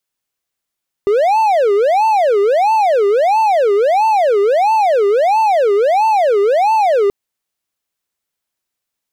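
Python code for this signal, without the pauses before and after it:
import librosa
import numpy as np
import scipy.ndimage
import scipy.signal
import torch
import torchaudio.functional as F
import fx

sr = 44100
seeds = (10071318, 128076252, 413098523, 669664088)

y = fx.siren(sr, length_s=6.03, kind='wail', low_hz=398.0, high_hz=889.0, per_s=1.5, wave='triangle', level_db=-7.5)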